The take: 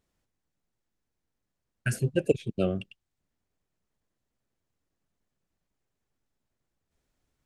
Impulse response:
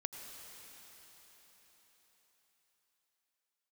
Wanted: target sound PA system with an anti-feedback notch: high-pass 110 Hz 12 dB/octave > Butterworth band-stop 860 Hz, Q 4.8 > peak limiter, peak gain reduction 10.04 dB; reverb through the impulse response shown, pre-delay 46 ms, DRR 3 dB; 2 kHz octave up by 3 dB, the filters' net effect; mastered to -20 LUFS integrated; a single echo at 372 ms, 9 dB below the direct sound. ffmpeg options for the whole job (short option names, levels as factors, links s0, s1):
-filter_complex "[0:a]equalizer=f=2000:t=o:g=4.5,aecho=1:1:372:0.355,asplit=2[s0][s1];[1:a]atrim=start_sample=2205,adelay=46[s2];[s1][s2]afir=irnorm=-1:irlink=0,volume=0.794[s3];[s0][s3]amix=inputs=2:normalize=0,highpass=110,asuperstop=centerf=860:order=8:qfactor=4.8,volume=4.22,alimiter=limit=0.501:level=0:latency=1"